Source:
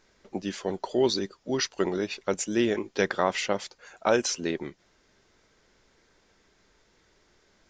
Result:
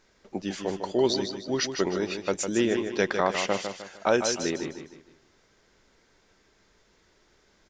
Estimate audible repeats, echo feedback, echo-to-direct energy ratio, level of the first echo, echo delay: 4, 38%, -7.0 dB, -7.5 dB, 153 ms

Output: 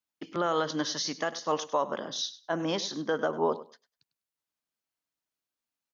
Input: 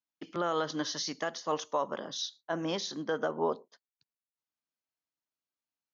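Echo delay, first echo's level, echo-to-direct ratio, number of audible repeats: 100 ms, -16.0 dB, -16.0 dB, 2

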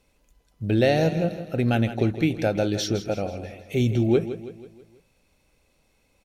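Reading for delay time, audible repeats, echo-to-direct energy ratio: 162 ms, 4, -11.0 dB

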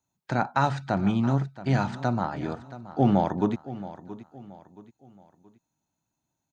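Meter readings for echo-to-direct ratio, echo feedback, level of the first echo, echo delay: -15.0 dB, 38%, -15.5 dB, 675 ms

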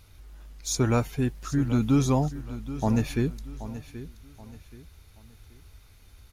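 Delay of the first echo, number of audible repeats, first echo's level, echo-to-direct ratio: 778 ms, 3, -14.0 dB, -13.5 dB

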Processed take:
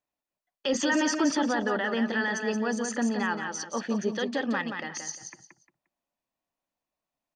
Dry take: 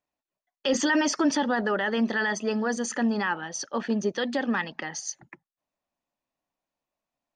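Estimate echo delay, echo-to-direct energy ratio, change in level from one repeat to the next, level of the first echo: 176 ms, -6.0 dB, -12.0 dB, -6.5 dB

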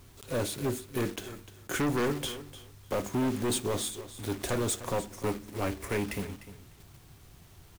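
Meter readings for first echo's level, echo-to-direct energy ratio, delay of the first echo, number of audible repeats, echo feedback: -14.5 dB, -14.5 dB, 301 ms, 2, 16%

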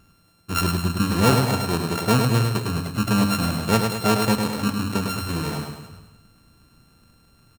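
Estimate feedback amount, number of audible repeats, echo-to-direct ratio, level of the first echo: 51%, 6, -3.5 dB, -5.0 dB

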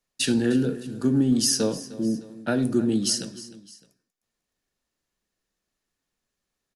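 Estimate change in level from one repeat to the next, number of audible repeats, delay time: -6.0 dB, 2, 306 ms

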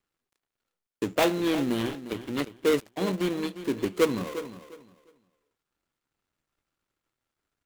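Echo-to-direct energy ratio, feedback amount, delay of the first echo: -13.0 dB, 22%, 353 ms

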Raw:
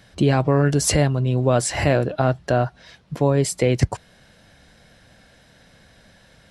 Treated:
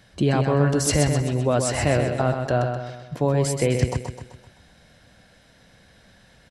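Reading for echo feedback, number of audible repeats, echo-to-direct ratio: 48%, 5, -5.0 dB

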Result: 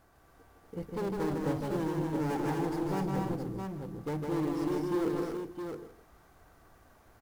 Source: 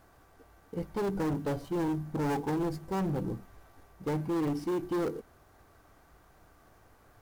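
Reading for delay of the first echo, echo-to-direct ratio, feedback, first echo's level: 155 ms, 1.5 dB, no regular repeats, -3.5 dB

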